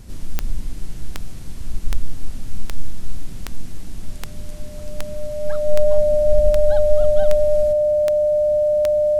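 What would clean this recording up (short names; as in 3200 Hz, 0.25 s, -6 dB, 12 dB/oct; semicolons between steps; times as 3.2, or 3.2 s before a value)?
de-click; notch 600 Hz, Q 30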